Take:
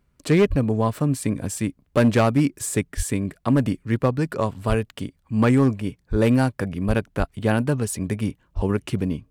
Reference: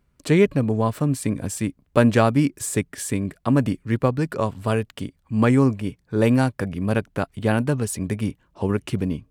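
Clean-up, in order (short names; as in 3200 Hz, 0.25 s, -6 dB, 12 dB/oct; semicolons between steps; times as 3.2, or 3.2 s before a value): clip repair -11 dBFS; de-plosive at 0.49/2.96/4.68/6.1/6.87/7.18/8.55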